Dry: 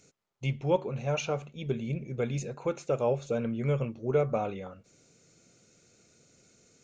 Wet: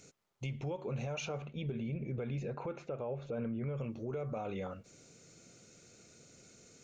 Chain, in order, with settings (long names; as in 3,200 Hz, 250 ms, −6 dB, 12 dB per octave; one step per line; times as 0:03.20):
downward compressor 4 to 1, threshold −33 dBFS, peak gain reduction 11.5 dB
brickwall limiter −33.5 dBFS, peak gain reduction 9.5 dB
0:01.37–0:03.76: low-pass filter 3,500 Hz → 2,000 Hz 12 dB per octave
level +3 dB